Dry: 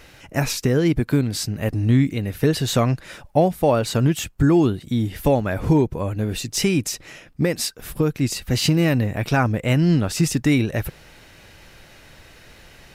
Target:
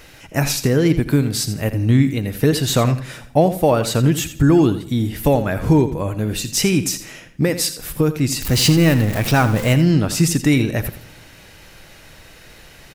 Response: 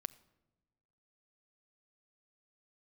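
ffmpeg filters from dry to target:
-filter_complex "[0:a]asettb=1/sr,asplit=3[link_01][link_02][link_03];[link_01]atrim=end=8.424[link_04];[link_02]atrim=start=8.42:end=9.74,asetpts=PTS-STARTPTS,afade=type=in:duration=0.004:curve=qsin,afade=type=out:start_time=1.316:duration=0.004:curve=qsin,aeval=exprs='val(0)+0.5*0.0531*sgn(val(0))':channel_layout=same[link_05];[link_03]atrim=start=9.736[link_06];[link_04][link_05]acrossfade=duration=0.004:curve1=hsin:curve2=qsin[link_07];[link_07][link_06]acrossfade=duration=0.004:curve1=qsin:curve2=hsin,aecho=1:1:84|168|252:0.251|0.0653|0.017,asplit=2[link_08][link_09];[1:a]atrim=start_sample=2205,highshelf=frequency=6300:gain=7.5[link_10];[link_09][link_10]afir=irnorm=-1:irlink=0,volume=6dB[link_11];[link_08][link_11]amix=inputs=2:normalize=0,volume=-5.5dB"

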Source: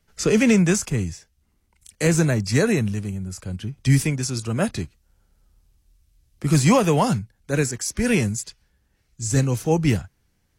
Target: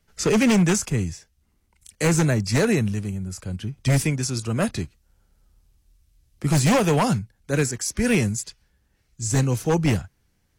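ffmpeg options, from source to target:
ffmpeg -i in.wav -af "aeval=exprs='0.237*(abs(mod(val(0)/0.237+3,4)-2)-1)':channel_layout=same" out.wav

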